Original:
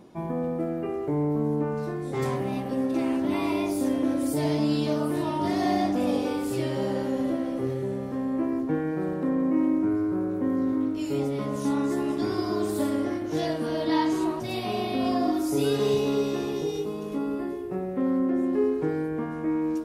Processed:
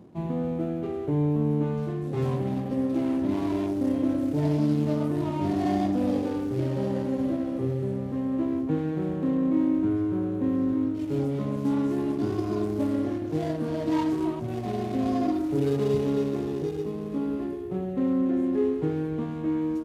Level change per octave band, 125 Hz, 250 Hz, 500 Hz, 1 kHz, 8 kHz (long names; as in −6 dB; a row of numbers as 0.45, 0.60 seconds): +4.5 dB, +0.5 dB, −1.5 dB, −4.0 dB, can't be measured